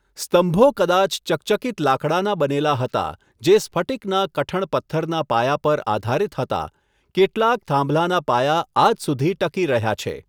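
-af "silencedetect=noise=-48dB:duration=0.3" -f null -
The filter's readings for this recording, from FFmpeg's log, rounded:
silence_start: 6.70
silence_end: 7.15 | silence_duration: 0.45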